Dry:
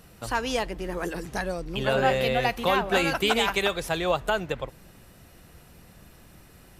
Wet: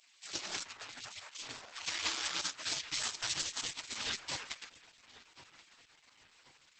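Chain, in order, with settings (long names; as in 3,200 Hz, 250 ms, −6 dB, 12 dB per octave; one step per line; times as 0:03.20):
running median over 15 samples
0:03.40–0:03.83: hum removal 356.7 Hz, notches 2
gate on every frequency bin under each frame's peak −30 dB weak
0:01.99–0:02.83: high-pass filter 48 Hz 6 dB per octave
feedback echo with a low-pass in the loop 1,075 ms, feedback 53%, low-pass 3,400 Hz, level −17 dB
level +9 dB
Opus 10 kbit/s 48,000 Hz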